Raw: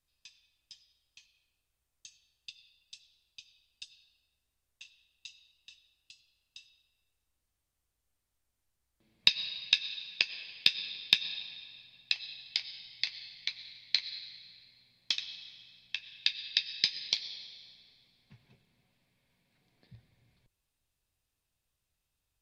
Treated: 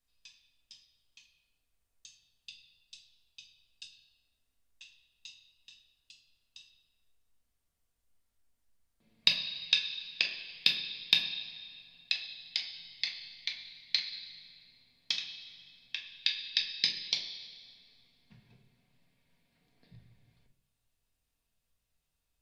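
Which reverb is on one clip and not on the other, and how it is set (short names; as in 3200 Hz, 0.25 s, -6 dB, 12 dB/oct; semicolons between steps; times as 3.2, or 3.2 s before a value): shoebox room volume 640 m³, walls furnished, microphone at 1.7 m; gain -2 dB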